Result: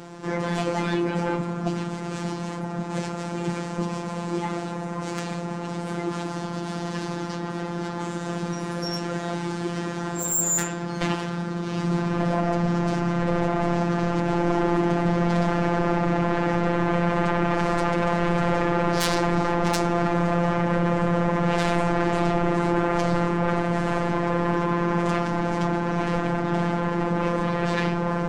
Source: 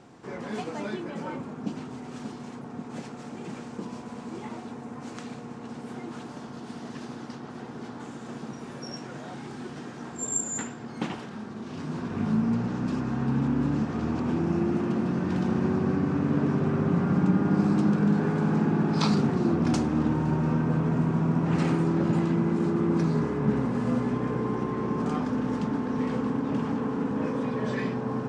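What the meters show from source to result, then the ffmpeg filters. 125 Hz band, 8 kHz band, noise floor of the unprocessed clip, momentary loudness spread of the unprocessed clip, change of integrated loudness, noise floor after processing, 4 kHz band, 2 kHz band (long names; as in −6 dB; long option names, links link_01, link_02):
+2.5 dB, +6.5 dB, −41 dBFS, 15 LU, +2.0 dB, −32 dBFS, +8.5 dB, +10.0 dB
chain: -af "aeval=exprs='0.299*sin(PI/2*6.31*val(0)/0.299)':channel_layout=same,afftfilt=real='hypot(re,im)*cos(PI*b)':imag='0':win_size=1024:overlap=0.75,volume=-5.5dB"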